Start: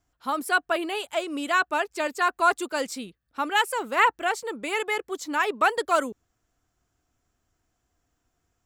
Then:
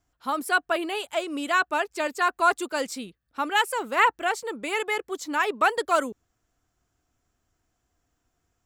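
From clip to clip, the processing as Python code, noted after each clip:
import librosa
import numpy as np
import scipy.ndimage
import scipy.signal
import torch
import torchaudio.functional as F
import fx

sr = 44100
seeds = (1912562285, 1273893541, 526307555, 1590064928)

y = x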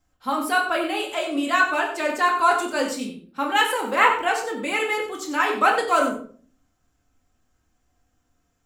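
y = x + 10.0 ** (-11.0 / 20.0) * np.pad(x, (int(93 * sr / 1000.0), 0))[:len(x)]
y = fx.room_shoebox(y, sr, seeds[0], volume_m3=370.0, walls='furnished', distance_m=2.1)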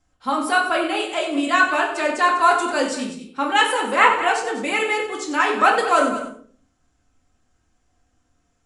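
y = fx.brickwall_lowpass(x, sr, high_hz=11000.0)
y = y + 10.0 ** (-12.5 / 20.0) * np.pad(y, (int(198 * sr / 1000.0), 0))[:len(y)]
y = F.gain(torch.from_numpy(y), 2.5).numpy()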